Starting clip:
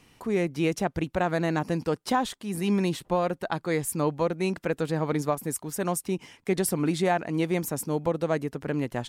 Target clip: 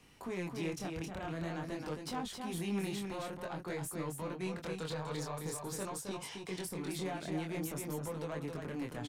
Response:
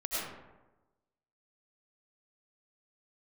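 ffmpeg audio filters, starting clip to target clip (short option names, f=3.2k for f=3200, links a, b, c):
-filter_complex "[0:a]asettb=1/sr,asplit=3[a][b][c];[a]atrim=end=4.624[d];[b]atrim=start=4.62:end=6.5,asetpts=PTS-STARTPTS,afade=t=in:d=0.004:c=qsin,afade=t=out:st=1.876:d=0.004:c=qsin,equalizer=f=125:t=o:w=1:g=4,equalizer=f=250:t=o:w=1:g=-5,equalizer=f=500:t=o:w=1:g=6,equalizer=f=1k:t=o:w=1:g=10,equalizer=f=4k:t=o:w=1:g=12,equalizer=f=8k:t=o:w=1:g=5[e];[c]atrim=start=6.496[f];[d][e]acrossfade=d=0.004:c1=hsin:c2=qsin[g];[g][f]acrossfade=d=0.004:c1=qsin:c2=hsin,acrossover=split=250|970[h][i][j];[h]acompressor=threshold=-36dB:ratio=4[k];[i]acompressor=threshold=-34dB:ratio=4[l];[j]acompressor=threshold=-37dB:ratio=4[m];[k][l][m]amix=inputs=3:normalize=0,alimiter=level_in=0.5dB:limit=-24dB:level=0:latency=1,volume=-0.5dB,asoftclip=type=tanh:threshold=-29dB,flanger=delay=19.5:depth=7.1:speed=0.49,aecho=1:1:266:0.562,volume=-1dB"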